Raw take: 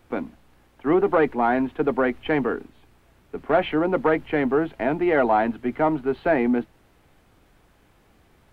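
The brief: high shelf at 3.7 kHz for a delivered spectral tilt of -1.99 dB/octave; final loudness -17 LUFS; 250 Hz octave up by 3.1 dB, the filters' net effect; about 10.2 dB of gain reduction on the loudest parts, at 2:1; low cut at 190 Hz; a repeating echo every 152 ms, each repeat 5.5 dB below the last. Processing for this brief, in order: high-pass 190 Hz; peaking EQ 250 Hz +5 dB; treble shelf 3.7 kHz -3 dB; compression 2:1, threshold -33 dBFS; feedback delay 152 ms, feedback 53%, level -5.5 dB; trim +12.5 dB

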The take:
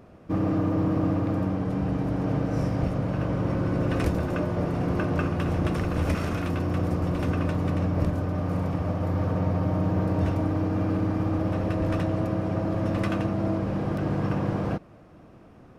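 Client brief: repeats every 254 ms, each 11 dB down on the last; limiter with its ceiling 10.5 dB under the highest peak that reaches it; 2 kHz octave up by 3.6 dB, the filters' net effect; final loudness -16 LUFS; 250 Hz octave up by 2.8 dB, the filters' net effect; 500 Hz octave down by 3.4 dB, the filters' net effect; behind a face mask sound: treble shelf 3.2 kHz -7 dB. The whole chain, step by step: peaking EQ 250 Hz +6 dB; peaking EQ 500 Hz -7 dB; peaking EQ 2 kHz +7.5 dB; peak limiter -20.5 dBFS; treble shelf 3.2 kHz -7 dB; feedback delay 254 ms, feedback 28%, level -11 dB; trim +13 dB

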